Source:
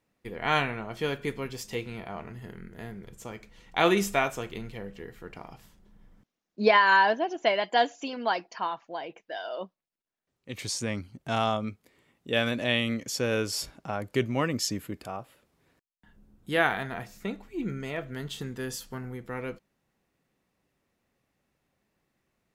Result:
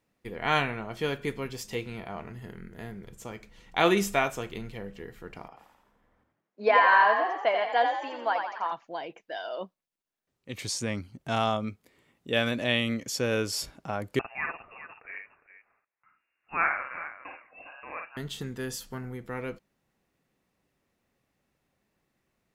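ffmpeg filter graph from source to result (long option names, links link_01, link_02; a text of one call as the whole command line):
ffmpeg -i in.wav -filter_complex "[0:a]asettb=1/sr,asplit=3[link_01][link_02][link_03];[link_01]atrim=end=5.484[link_04];[link_02]atrim=start=5.48:end=8.72,asetpts=PTS-STARTPTS,afade=type=in:duration=0.004:curve=qsin,afade=type=out:start_time=3.236:duration=0.004:curve=qsin,acrossover=split=340 2400:gain=0.126 1 0.224[link_05][link_06][link_07];[link_05][link_06][link_07]amix=inputs=3:normalize=0,bandreject=frequency=360:width=5.7,asplit=8[link_08][link_09][link_10][link_11][link_12][link_13][link_14][link_15];[link_09]adelay=86,afreqshift=42,volume=-5.5dB[link_16];[link_10]adelay=172,afreqshift=84,volume=-11dB[link_17];[link_11]adelay=258,afreqshift=126,volume=-16.5dB[link_18];[link_12]adelay=344,afreqshift=168,volume=-22dB[link_19];[link_13]adelay=430,afreqshift=210,volume=-27.6dB[link_20];[link_14]adelay=516,afreqshift=252,volume=-33.1dB[link_21];[link_15]adelay=602,afreqshift=294,volume=-38.6dB[link_22];[link_08][link_16][link_17][link_18][link_19][link_20][link_21][link_22]amix=inputs=8:normalize=0,atrim=end_sample=142884[link_23];[link_03]atrim=start=8.716[link_24];[link_04][link_23]acrossfade=duration=0.004:curve1=hsin:curve2=qsin[link_25];[link_25][link_24]acrossfade=duration=0.004:curve1=qsin:curve2=hsin,asettb=1/sr,asplit=3[link_26][link_27][link_28];[link_26]atrim=end=14.194[link_29];[link_27]atrim=start=14.19:end=18.17,asetpts=PTS-STARTPTS,afade=type=in:duration=0.004:curve=qsin,afade=type=out:start_time=3.976:duration=0.004:curve=qsin,highpass=1000,aecho=1:1:52|408:0.631|0.224,atrim=end_sample=175518,lowpass=frequency=2600:width_type=q:width=0.5098,lowpass=frequency=2600:width_type=q:width=0.6013,lowpass=frequency=2600:width_type=q:width=0.9,lowpass=frequency=2600:width_type=q:width=2.563,afreqshift=-3000[link_30];[link_28]atrim=start=18.166[link_31];[link_29][link_30]acrossfade=duration=0.004:curve1=hsin:curve2=qsin[link_32];[link_32][link_31]acrossfade=duration=0.004:curve1=qsin:curve2=hsin" out.wav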